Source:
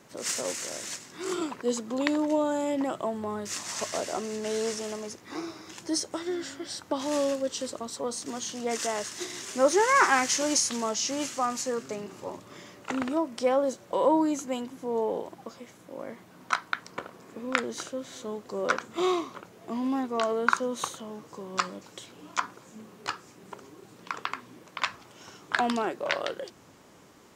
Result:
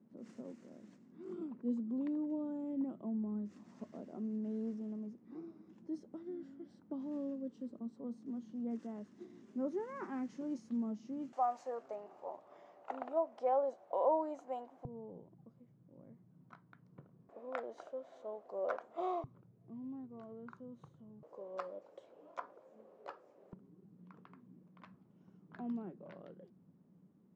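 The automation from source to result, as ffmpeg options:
ffmpeg -i in.wav -af "asetnsamples=nb_out_samples=441:pad=0,asendcmd='11.33 bandpass f 710;14.85 bandpass f 140;17.29 bandpass f 660;19.24 bandpass f 130;21.23 bandpass f 570;23.53 bandpass f 180',bandpass=frequency=220:width_type=q:width=4.4:csg=0" out.wav

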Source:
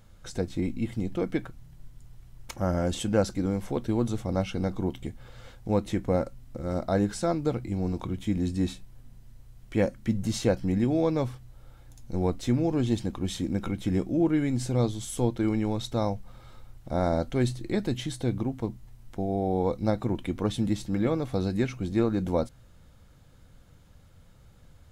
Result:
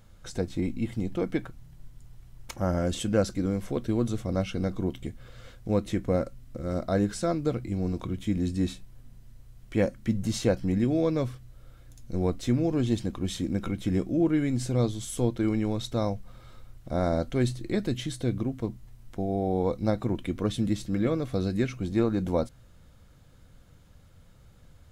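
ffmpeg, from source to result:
ffmpeg -i in.wav -af "asetnsamples=nb_out_samples=441:pad=0,asendcmd='2.79 equalizer g -12;8.71 equalizer g -5;10.73 equalizer g -14;12.19 equalizer g -8;17.87 equalizer g -14.5;18.65 equalizer g -4.5;20.16 equalizer g -14;21.79 equalizer g -2.5',equalizer=frequency=850:width_type=o:width=0.21:gain=-1" out.wav

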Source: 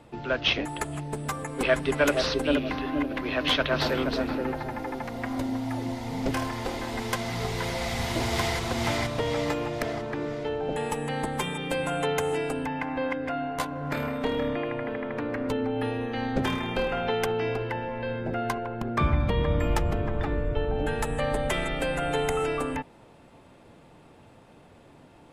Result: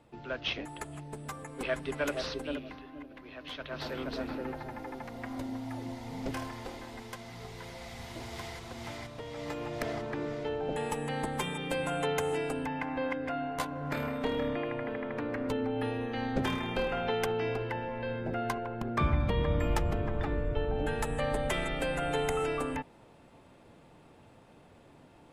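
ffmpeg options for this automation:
ffmpeg -i in.wav -af "volume=11.5dB,afade=type=out:start_time=2.28:duration=0.6:silence=0.354813,afade=type=in:start_time=3.52:duration=0.72:silence=0.298538,afade=type=out:start_time=6.33:duration=0.81:silence=0.473151,afade=type=in:start_time=9.33:duration=0.57:silence=0.298538" out.wav

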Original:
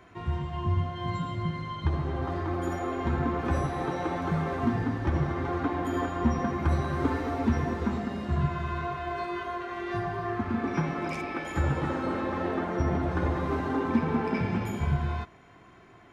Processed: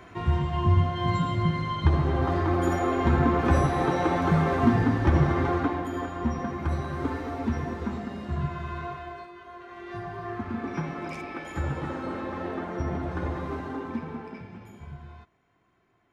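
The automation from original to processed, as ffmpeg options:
ffmpeg -i in.wav -af "volume=16.5dB,afade=type=out:start_time=5.41:duration=0.48:silence=0.375837,afade=type=out:start_time=8.9:duration=0.43:silence=0.281838,afade=type=in:start_time=9.33:duration=1:silence=0.298538,afade=type=out:start_time=13.37:duration=1.1:silence=0.251189" out.wav

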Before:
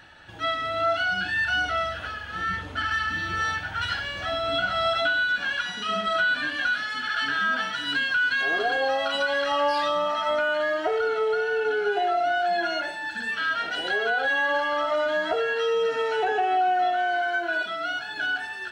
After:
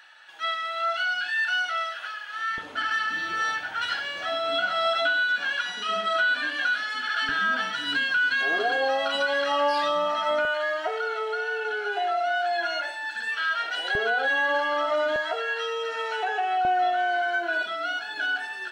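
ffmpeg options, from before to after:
ffmpeg -i in.wav -af "asetnsamples=nb_out_samples=441:pad=0,asendcmd='2.58 highpass f 320;7.29 highpass f 150;10.45 highpass f 630;13.95 highpass f 190;15.16 highpass f 690;16.65 highpass f 300',highpass=1000" out.wav

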